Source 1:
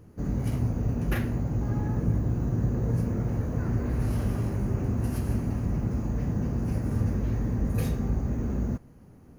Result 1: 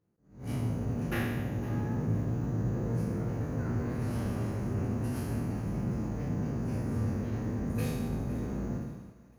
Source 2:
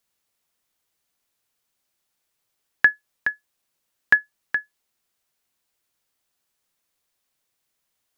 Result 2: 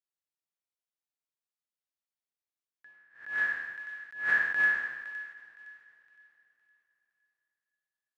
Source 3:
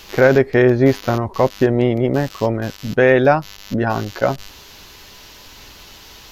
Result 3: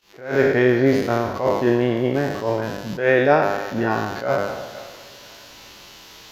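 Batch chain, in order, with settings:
peak hold with a decay on every bin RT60 1.21 s
noise gate −41 dBFS, range −20 dB
high-pass filter 130 Hz 6 dB per octave
high-shelf EQ 11,000 Hz −5 dB
flanger 0.34 Hz, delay 5.6 ms, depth 3.8 ms, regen −63%
on a send: feedback echo with a high-pass in the loop 513 ms, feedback 36%, high-pass 1,100 Hz, level −16.5 dB
on the sum: four-comb reverb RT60 3.8 s, combs from 32 ms, DRR 19 dB
level that may rise only so fast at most 130 dB per second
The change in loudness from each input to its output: −4.5, −6.5, −3.5 LU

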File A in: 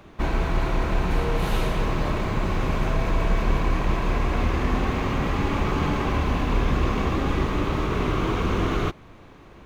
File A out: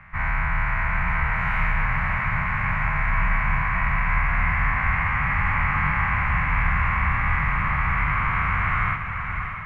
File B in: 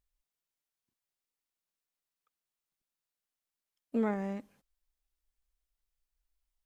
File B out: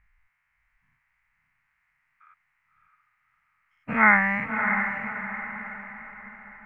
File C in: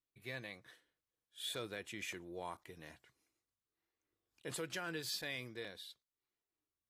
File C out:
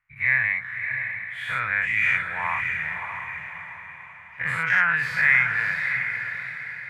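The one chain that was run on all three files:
every bin's largest magnitude spread in time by 120 ms
drawn EQ curve 150 Hz 0 dB, 370 Hz −28 dB, 910 Hz +2 dB, 1,500 Hz +8 dB, 2,100 Hz +14 dB, 3,500 Hz −18 dB, 14,000 Hz −25 dB
on a send: feedback delay with all-pass diffusion 616 ms, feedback 43%, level −6 dB
on the sum: loudness normalisation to −23 LKFS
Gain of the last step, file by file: −5.0, +13.5, +11.5 decibels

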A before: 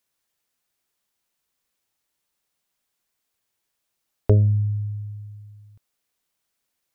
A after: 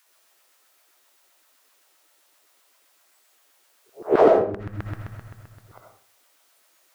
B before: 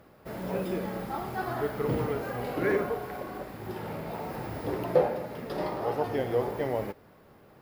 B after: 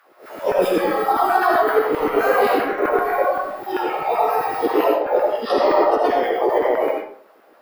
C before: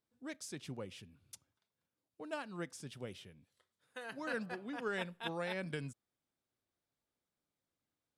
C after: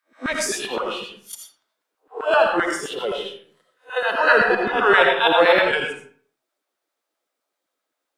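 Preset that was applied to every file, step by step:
peak hold with a rise ahead of every peak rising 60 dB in 0.35 s
noise reduction from a noise print of the clip's start 14 dB
low-shelf EQ 130 Hz −11.5 dB
compressor whose output falls as the input rises −34 dBFS, ratio −1
auto-filter high-pass saw down 7.7 Hz 260–1,600 Hz
comb and all-pass reverb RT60 0.5 s, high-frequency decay 0.7×, pre-delay 40 ms, DRR 1 dB
loudness normalisation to −19 LKFS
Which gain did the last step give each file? +20.0, +11.0, +20.0 decibels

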